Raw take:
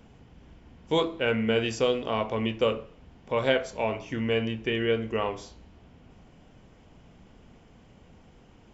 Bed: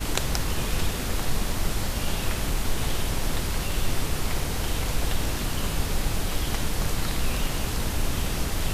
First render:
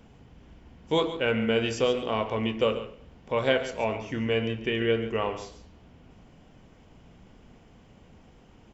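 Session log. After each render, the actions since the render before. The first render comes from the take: delay 139 ms -12.5 dB; modulated delay 118 ms, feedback 36%, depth 89 cents, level -20.5 dB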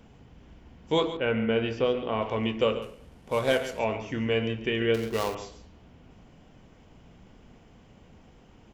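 1.17–2.22 s: distance through air 250 m; 2.82–3.79 s: CVSD coder 64 kbps; 4.94–5.35 s: dead-time distortion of 0.14 ms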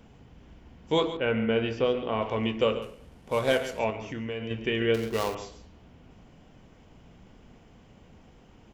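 3.90–4.51 s: compression 3:1, threshold -32 dBFS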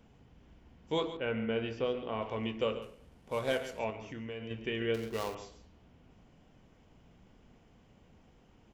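trim -7.5 dB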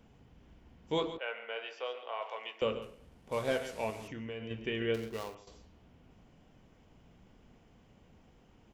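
1.18–2.62 s: high-pass 590 Hz 24 dB/octave; 3.32–4.08 s: one-bit delta coder 64 kbps, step -46 dBFS; 4.93–5.47 s: fade out, to -13 dB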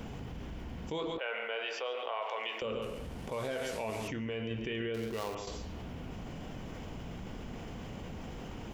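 peak limiter -28.5 dBFS, peak gain reduction 9 dB; level flattener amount 70%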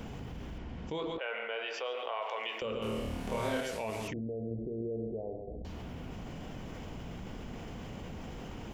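0.58–1.74 s: distance through air 75 m; 2.78–3.61 s: flutter echo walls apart 4.6 m, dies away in 0.88 s; 4.13–5.65 s: steep low-pass 720 Hz 72 dB/octave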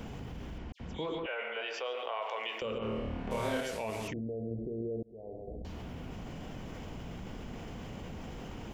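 0.72–1.61 s: phase dispersion lows, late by 79 ms, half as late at 2.7 kHz; 2.78–3.31 s: low-pass 2.5 kHz; 5.03–5.49 s: fade in

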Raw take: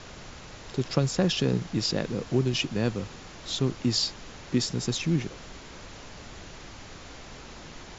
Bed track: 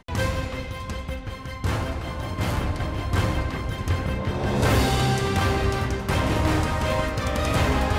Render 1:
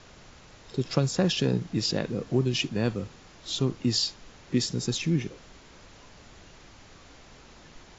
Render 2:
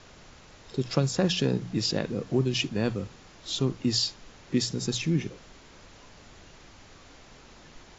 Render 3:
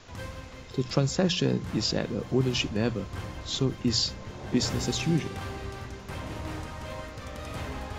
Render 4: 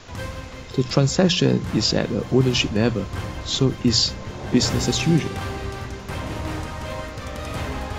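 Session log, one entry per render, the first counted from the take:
noise print and reduce 7 dB
hum notches 60/120/180 Hz
add bed track -14.5 dB
trim +7.5 dB; peak limiter -3 dBFS, peak gain reduction 1.5 dB

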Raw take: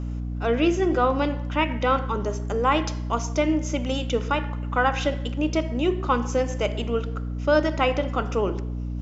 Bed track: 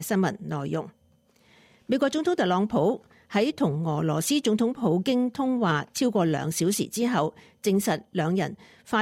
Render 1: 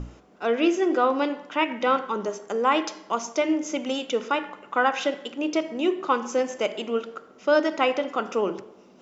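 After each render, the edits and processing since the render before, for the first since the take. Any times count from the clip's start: hum notches 60/120/180/240/300 Hz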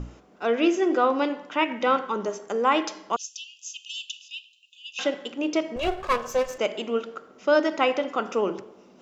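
3.16–4.99 s: brick-wall FIR high-pass 2.5 kHz; 5.76–6.58 s: comb filter that takes the minimum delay 1.8 ms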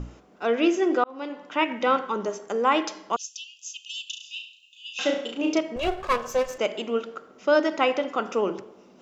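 1.04–1.59 s: fade in linear; 4.03–5.59 s: flutter echo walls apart 6 m, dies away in 0.46 s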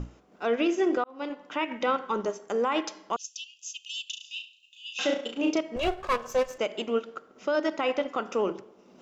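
transient shaper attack -2 dB, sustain -6 dB; peak limiter -17 dBFS, peak gain reduction 8.5 dB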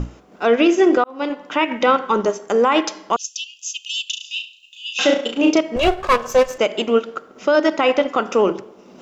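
trim +11 dB

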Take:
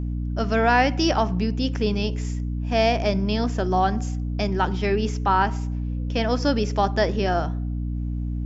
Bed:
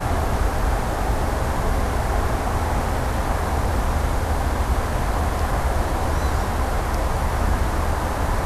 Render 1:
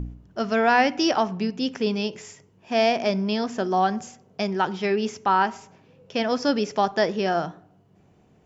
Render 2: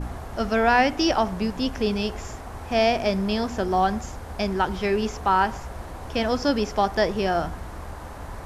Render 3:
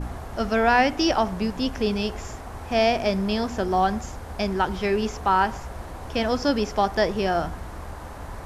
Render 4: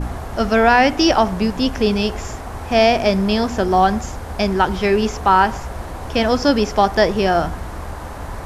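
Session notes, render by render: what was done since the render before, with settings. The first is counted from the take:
de-hum 60 Hz, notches 5
add bed -14.5 dB
no audible change
trim +7 dB; peak limiter -2 dBFS, peak gain reduction 2.5 dB

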